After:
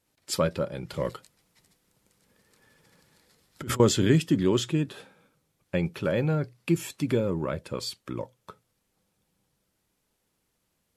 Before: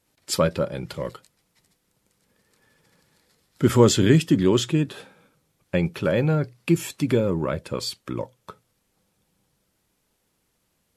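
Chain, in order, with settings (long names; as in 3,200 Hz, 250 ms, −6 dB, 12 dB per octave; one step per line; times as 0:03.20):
0:00.93–0:03.80: compressor whose output falls as the input rises −27 dBFS, ratio −1
level −4.5 dB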